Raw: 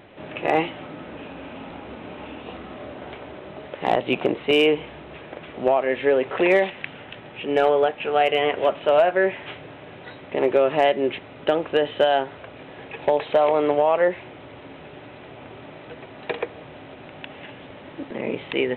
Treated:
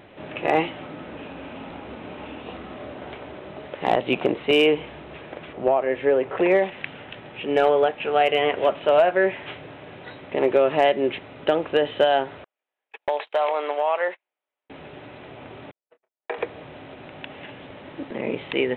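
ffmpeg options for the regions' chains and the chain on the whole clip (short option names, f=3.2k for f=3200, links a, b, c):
-filter_complex "[0:a]asettb=1/sr,asplit=3[a][b][c];[a]atrim=end=5.534[d];[b]atrim=start=5.53:end=6.72,asetpts=PTS-STARTPTS,afade=t=in:d=0.004:c=qsin,afade=t=out:st=1.186:d=0.004:c=qsin,highshelf=f=2.7k:g=-11.5,bandreject=f=240:w=7.9[e];[c]atrim=start=6.716[f];[d][e]acrossfade=d=0.004:c1=hsin:c2=qsin[g];[g][f]acrossfade=d=0.004:c1=qsin:c2=hsin,asettb=1/sr,asplit=3[h][i][j];[h]atrim=end=12.444[k];[i]atrim=start=12.44:end=14.7,asetpts=PTS-STARTPTS,afade=t=in:d=0.004:c=qsin,afade=t=out:st=2.256:d=0.004:c=qsin,highpass=720,agate=range=-43dB:threshold=-36dB:ratio=16:release=100:detection=peak[l];[j]atrim=start=14.696[m];[k][l]acrossfade=d=0.004:c1=hsin:c2=qsin[n];[n][m]acrossfade=d=0.004:c1=qsin:c2=hsin,asettb=1/sr,asplit=3[o][p][q];[o]atrim=end=15.714[r];[p]atrim=start=15.71:end=16.38,asetpts=PTS-STARTPTS,afade=t=in:d=0.004:c=qsin,afade=t=out:st=0.666:d=0.004:c=qsin,agate=range=-59dB:threshold=-35dB:ratio=16:release=100:detection=peak,highpass=480,lowpass=2k,asplit=2[s][t];[t]adelay=27,volume=-9.5dB[u];[s][u]amix=inputs=2:normalize=0,atrim=end_sample=29547[v];[q]atrim=start=16.376[w];[r][v]acrossfade=d=0.004:c1=hsin:c2=qsin[x];[x][w]acrossfade=d=0.004:c1=qsin:c2=hsin"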